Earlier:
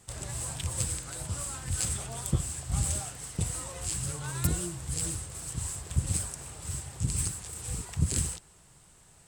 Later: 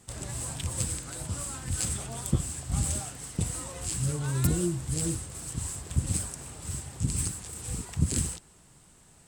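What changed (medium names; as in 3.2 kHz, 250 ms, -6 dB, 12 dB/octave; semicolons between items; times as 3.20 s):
speech +7.0 dB; master: add peaking EQ 250 Hz +6.5 dB 0.91 oct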